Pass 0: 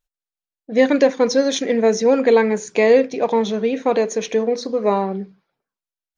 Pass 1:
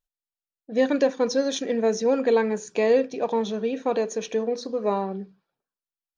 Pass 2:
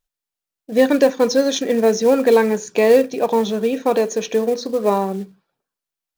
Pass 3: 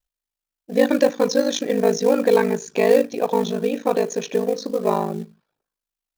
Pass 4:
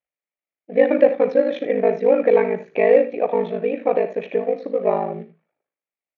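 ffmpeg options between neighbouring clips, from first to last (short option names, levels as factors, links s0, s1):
-af "bandreject=f=2100:w=6.3,volume=0.473"
-af "acrusher=bits=6:mode=log:mix=0:aa=0.000001,volume=2.24"
-af "aeval=exprs='val(0)*sin(2*PI*26*n/s)':c=same"
-af "highpass=210,equalizer=f=230:t=q:w=4:g=-6,equalizer=f=380:t=q:w=4:g=-3,equalizer=f=590:t=q:w=4:g=4,equalizer=f=1000:t=q:w=4:g=-8,equalizer=f=1500:t=q:w=4:g=-8,equalizer=f=2200:t=q:w=4:g=6,lowpass=f=2300:w=0.5412,lowpass=f=2300:w=1.3066,aecho=1:1:54|80:0.188|0.211,volume=1.19"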